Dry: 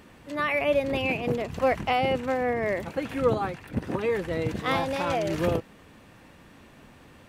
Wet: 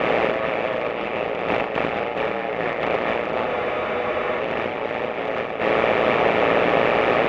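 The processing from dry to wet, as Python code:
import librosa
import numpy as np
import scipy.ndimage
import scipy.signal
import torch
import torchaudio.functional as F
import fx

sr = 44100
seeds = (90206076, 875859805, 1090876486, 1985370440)

p1 = fx.bin_compress(x, sr, power=0.2)
p2 = fx.bandpass_edges(p1, sr, low_hz=240.0, high_hz=3000.0)
p3 = fx.over_compress(p2, sr, threshold_db=-21.0, ratio=-0.5)
p4 = fx.doubler(p3, sr, ms=39.0, db=-3.0)
p5 = p4 + fx.echo_single(p4, sr, ms=426, db=-6.0, dry=0)
p6 = p5 * np.sin(2.0 * np.pi * 58.0 * np.arange(len(p5)) / sr)
y = fx.spec_freeze(p6, sr, seeds[0], at_s=3.49, hold_s=0.92)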